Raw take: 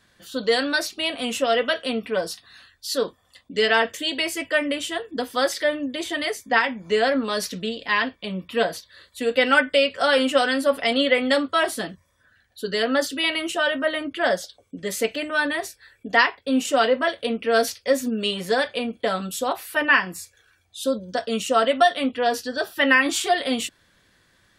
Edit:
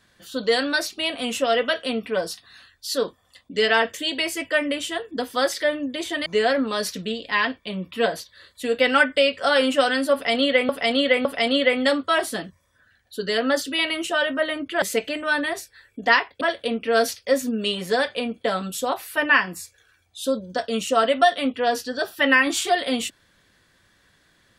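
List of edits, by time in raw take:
0:06.26–0:06.83: remove
0:10.70–0:11.26: repeat, 3 plays
0:14.27–0:14.89: remove
0:16.48–0:17.00: remove

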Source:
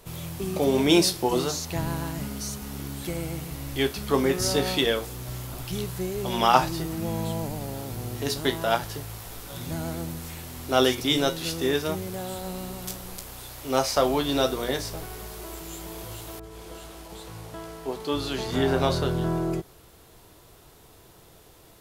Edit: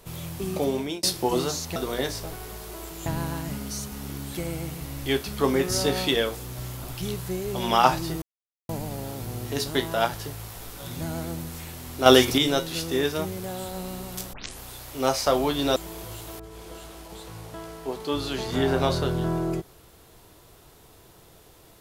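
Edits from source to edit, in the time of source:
0:00.54–0:01.03: fade out
0:06.92–0:07.39: silence
0:10.76–0:11.08: clip gain +6 dB
0:13.03: tape start 0.26 s
0:14.46–0:15.76: move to 0:01.76

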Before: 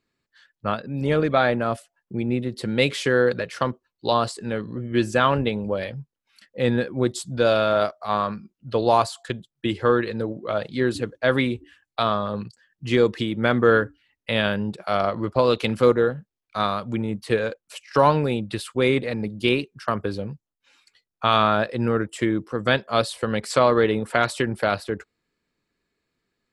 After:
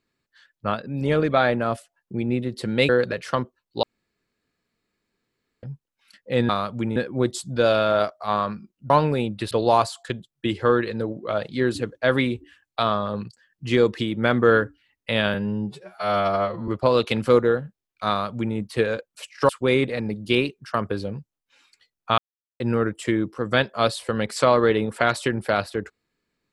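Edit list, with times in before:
0:02.89–0:03.17: remove
0:04.11–0:05.91: fill with room tone
0:14.54–0:15.21: time-stretch 2×
0:16.62–0:17.09: duplicate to 0:06.77
0:18.02–0:18.63: move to 0:08.71
0:21.32–0:21.74: silence

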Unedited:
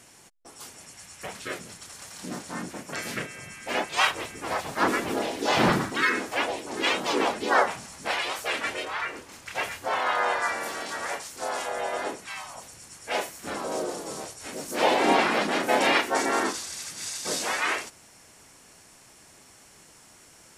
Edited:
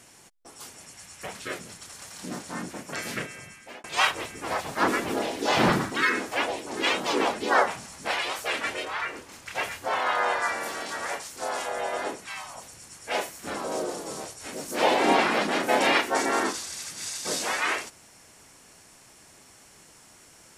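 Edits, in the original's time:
0:03.32–0:03.84: fade out

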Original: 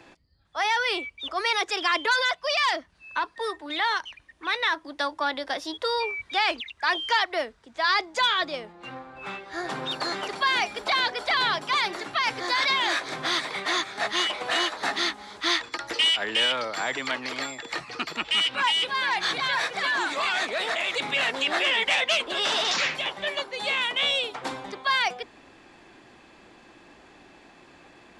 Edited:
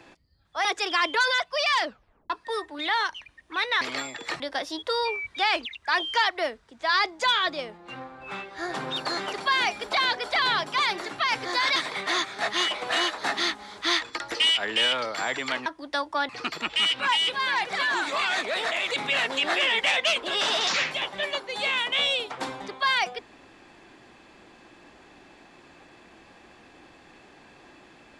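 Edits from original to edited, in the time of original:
0:00.65–0:01.56: remove
0:02.74: tape stop 0.47 s
0:04.72–0:05.35: swap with 0:17.25–0:17.84
0:12.71–0:13.35: remove
0:19.20–0:19.69: remove

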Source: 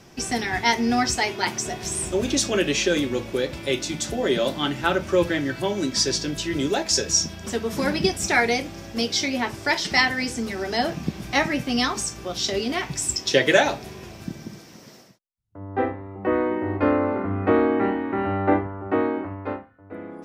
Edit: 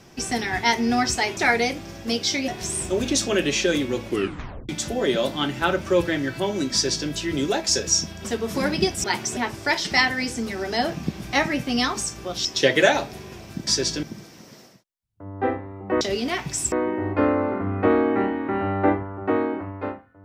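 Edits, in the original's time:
0:01.37–0:01.70: swap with 0:08.26–0:09.37
0:03.30: tape stop 0.61 s
0:05.95–0:06.31: duplicate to 0:14.38
0:12.45–0:13.16: move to 0:16.36

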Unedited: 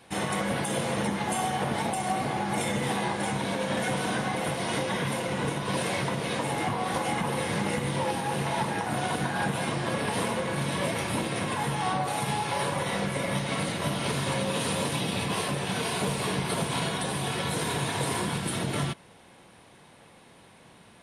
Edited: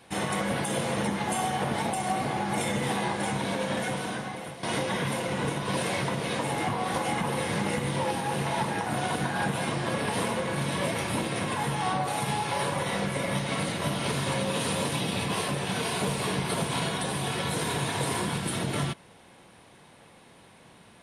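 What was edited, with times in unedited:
0:03.61–0:04.63: fade out linear, to −13 dB

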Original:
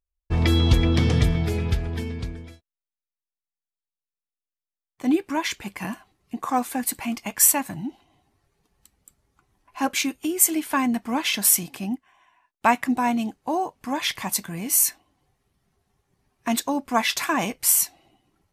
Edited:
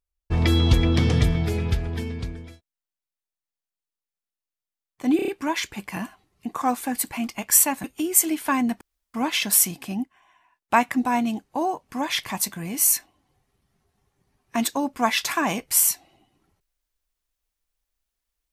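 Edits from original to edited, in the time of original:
0:05.16: stutter 0.03 s, 5 plays
0:07.72–0:10.09: remove
0:11.06: splice in room tone 0.33 s

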